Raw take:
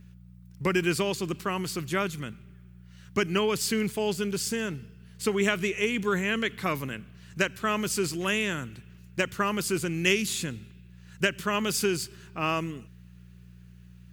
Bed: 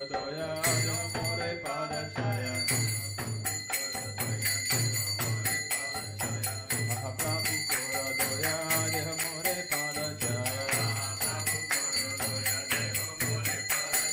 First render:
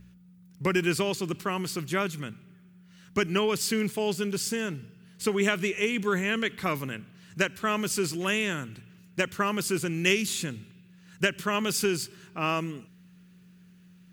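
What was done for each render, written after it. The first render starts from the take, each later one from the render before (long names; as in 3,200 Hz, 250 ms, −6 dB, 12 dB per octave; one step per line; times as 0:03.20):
hum removal 60 Hz, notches 2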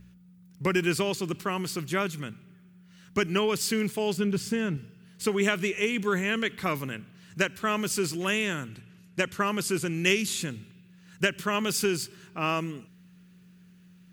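0:04.17–0:04.77: bass and treble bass +7 dB, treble −8 dB
0:08.68–0:10.42: linear-phase brick-wall low-pass 14,000 Hz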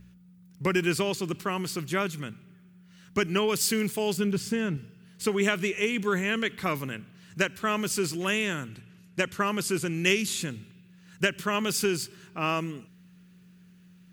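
0:03.48–0:04.33: high-shelf EQ 6,500 Hz +6.5 dB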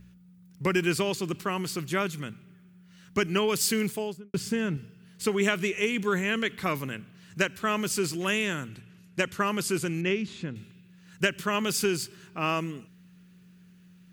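0:03.83–0:04.34: fade out and dull
0:10.01–0:10.56: head-to-tape spacing loss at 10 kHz 29 dB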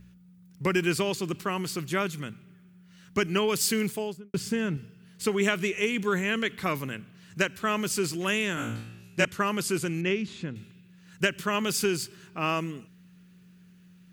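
0:08.55–0:09.25: flutter between parallel walls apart 3 metres, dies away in 0.6 s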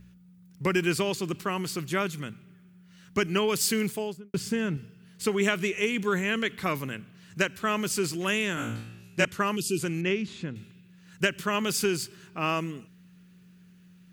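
0:09.56–0:09.79: gain on a spectral selection 460–2,400 Hz −19 dB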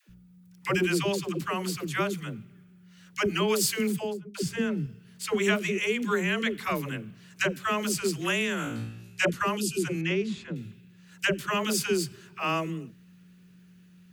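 all-pass dispersion lows, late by 97 ms, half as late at 480 Hz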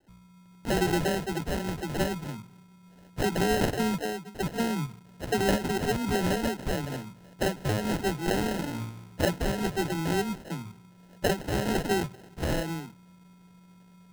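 decimation without filtering 38×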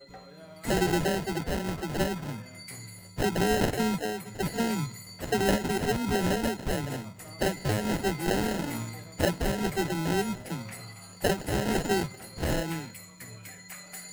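mix in bed −14.5 dB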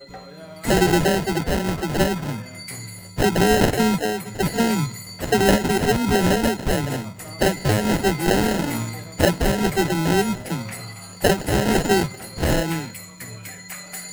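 level +8.5 dB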